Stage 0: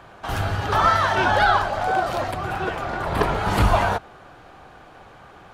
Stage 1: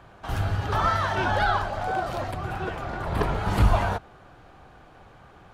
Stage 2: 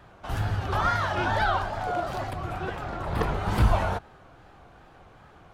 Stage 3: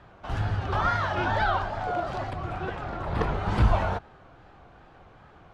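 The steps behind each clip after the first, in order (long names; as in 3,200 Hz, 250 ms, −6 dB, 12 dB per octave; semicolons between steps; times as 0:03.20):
low-shelf EQ 210 Hz +7.5 dB; level −6.5 dB
tape wow and flutter 110 cents; level −1.5 dB
high-frequency loss of the air 82 metres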